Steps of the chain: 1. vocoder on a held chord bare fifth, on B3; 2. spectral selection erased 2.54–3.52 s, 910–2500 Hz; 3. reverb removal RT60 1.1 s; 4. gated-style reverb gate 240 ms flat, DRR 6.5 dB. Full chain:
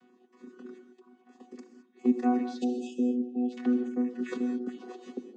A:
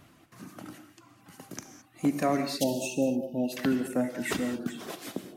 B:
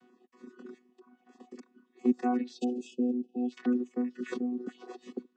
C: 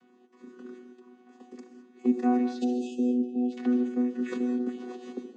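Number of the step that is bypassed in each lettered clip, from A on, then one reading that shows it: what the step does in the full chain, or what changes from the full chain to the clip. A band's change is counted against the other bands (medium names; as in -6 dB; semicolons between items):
1, 2 kHz band +7.5 dB; 4, loudness change -2.5 LU; 3, crest factor change -2.0 dB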